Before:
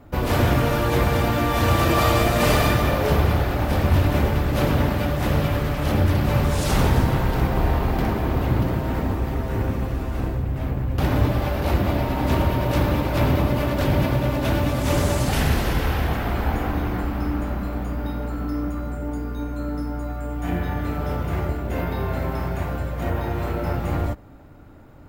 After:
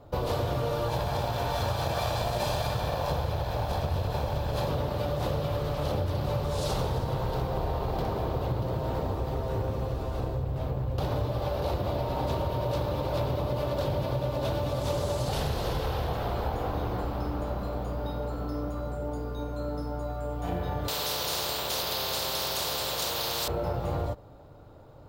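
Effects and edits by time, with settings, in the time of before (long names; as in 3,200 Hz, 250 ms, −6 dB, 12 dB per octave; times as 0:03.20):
0:00.88–0:04.68: lower of the sound and its delayed copy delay 1.2 ms
0:20.88–0:23.48: every bin compressed towards the loudest bin 10 to 1
whole clip: octave-band graphic EQ 125/250/500/1,000/2,000/4,000 Hz +6/−6/+10/+5/−7/+9 dB; downward compressor, threshold −18 dBFS; level −7.5 dB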